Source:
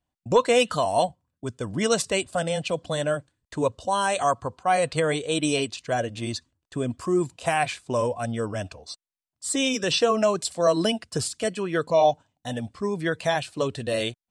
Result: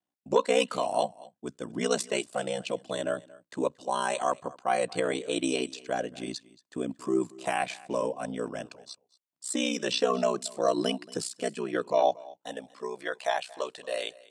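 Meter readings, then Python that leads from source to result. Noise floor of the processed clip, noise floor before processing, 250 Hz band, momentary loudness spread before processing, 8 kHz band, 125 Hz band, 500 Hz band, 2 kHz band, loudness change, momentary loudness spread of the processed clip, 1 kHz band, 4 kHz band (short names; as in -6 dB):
-85 dBFS, under -85 dBFS, -5.0 dB, 12 LU, -6.0 dB, -13.0 dB, -5.0 dB, -6.0 dB, -5.0 dB, 14 LU, -5.5 dB, -6.0 dB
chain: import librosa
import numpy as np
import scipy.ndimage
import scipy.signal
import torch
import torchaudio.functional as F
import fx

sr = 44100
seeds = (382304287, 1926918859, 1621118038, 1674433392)

y = x * np.sin(2.0 * np.pi * 31.0 * np.arange(len(x)) / sr)
y = fx.filter_sweep_highpass(y, sr, from_hz=240.0, to_hz=630.0, start_s=11.76, end_s=13.15, q=1.2)
y = y + 10.0 ** (-21.5 / 20.0) * np.pad(y, (int(229 * sr / 1000.0), 0))[:len(y)]
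y = y * 10.0 ** (-3.0 / 20.0)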